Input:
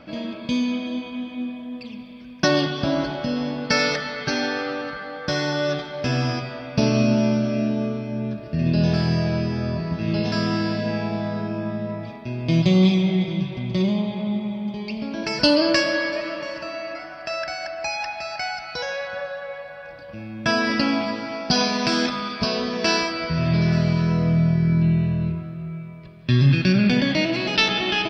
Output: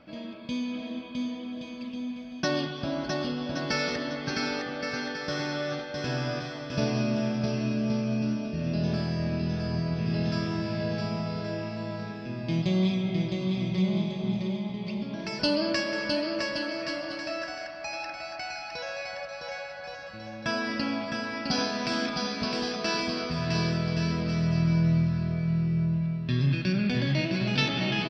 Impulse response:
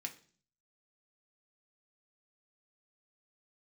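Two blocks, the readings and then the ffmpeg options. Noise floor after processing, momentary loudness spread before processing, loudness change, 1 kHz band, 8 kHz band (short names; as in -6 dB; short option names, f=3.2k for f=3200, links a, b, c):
-40 dBFS, 13 LU, -7.0 dB, -7.0 dB, n/a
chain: -af "aecho=1:1:660|1122|1445|1672|1830:0.631|0.398|0.251|0.158|0.1,volume=-9dB"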